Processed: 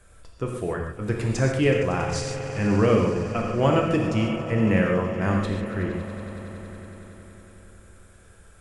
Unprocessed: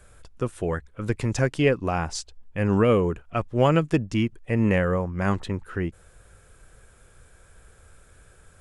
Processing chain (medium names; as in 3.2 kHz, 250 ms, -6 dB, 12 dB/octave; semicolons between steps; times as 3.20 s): vibrato 9.4 Hz 6.2 cents; echo with a slow build-up 93 ms, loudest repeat 5, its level -17.5 dB; gated-style reverb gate 170 ms flat, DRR 0.5 dB; trim -2.5 dB